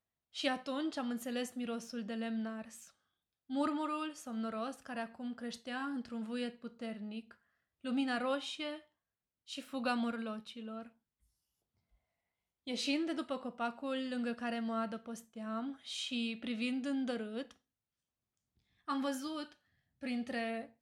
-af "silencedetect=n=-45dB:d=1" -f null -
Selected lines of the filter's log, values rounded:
silence_start: 10.86
silence_end: 12.67 | silence_duration: 1.81
silence_start: 17.51
silence_end: 18.88 | silence_duration: 1.37